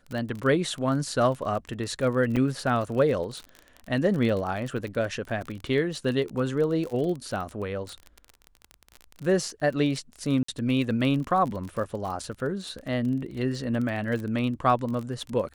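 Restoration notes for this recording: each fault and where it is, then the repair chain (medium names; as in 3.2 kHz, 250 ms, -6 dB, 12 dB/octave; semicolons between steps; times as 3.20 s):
crackle 30 per s -31 dBFS
2.36–2.37 s: dropout 6 ms
10.43–10.48 s: dropout 54 ms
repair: de-click; interpolate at 2.36 s, 6 ms; interpolate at 10.43 s, 54 ms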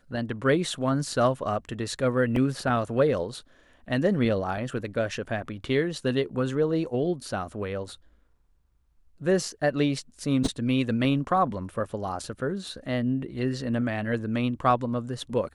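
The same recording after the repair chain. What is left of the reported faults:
nothing left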